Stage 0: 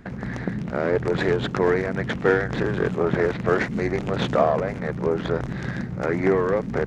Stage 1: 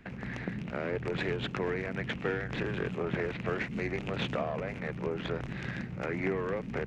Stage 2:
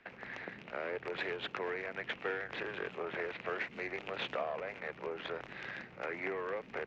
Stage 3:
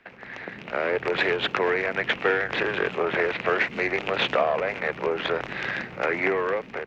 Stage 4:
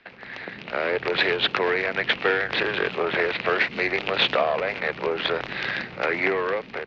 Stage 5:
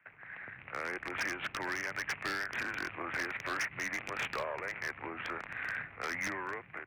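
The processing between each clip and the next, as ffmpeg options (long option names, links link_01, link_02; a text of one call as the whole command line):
ffmpeg -i in.wav -filter_complex "[0:a]equalizer=frequency=2600:width_type=o:width=0.74:gain=11.5,acrossover=split=260[link_01][link_02];[link_02]acompressor=threshold=-23dB:ratio=3[link_03];[link_01][link_03]amix=inputs=2:normalize=0,volume=-9dB" out.wav
ffmpeg -i in.wav -filter_complex "[0:a]acrossover=split=390 5800:gain=0.112 1 0.112[link_01][link_02][link_03];[link_01][link_02][link_03]amix=inputs=3:normalize=0,volume=-2dB" out.wav
ffmpeg -i in.wav -af "dynaudnorm=framelen=250:gausssize=5:maxgain=10dB,volume=4.5dB" out.wav
ffmpeg -i in.wav -af "lowpass=frequency=4400:width_type=q:width=2.6" out.wav
ffmpeg -i in.wav -af "equalizer=frequency=440:width_type=o:width=1.9:gain=-14,highpass=frequency=180:width_type=q:width=0.5412,highpass=frequency=180:width_type=q:width=1.307,lowpass=frequency=2400:width_type=q:width=0.5176,lowpass=frequency=2400:width_type=q:width=0.7071,lowpass=frequency=2400:width_type=q:width=1.932,afreqshift=-80,aeval=exprs='0.0841*(abs(mod(val(0)/0.0841+3,4)-2)-1)':channel_layout=same,volume=-6dB" out.wav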